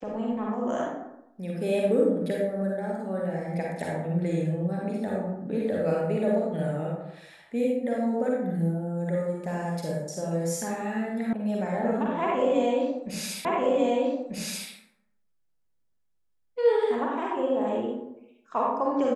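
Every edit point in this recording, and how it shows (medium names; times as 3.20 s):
11.33 s: sound stops dead
13.45 s: repeat of the last 1.24 s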